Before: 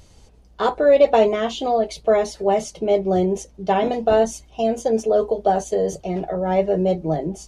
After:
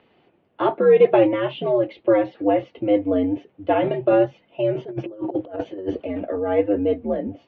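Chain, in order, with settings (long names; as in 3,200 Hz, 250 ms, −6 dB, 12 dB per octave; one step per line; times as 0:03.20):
single-sideband voice off tune −95 Hz 270–3,100 Hz
0:04.75–0:06.05: compressor whose output falls as the input rises −26 dBFS, ratio −0.5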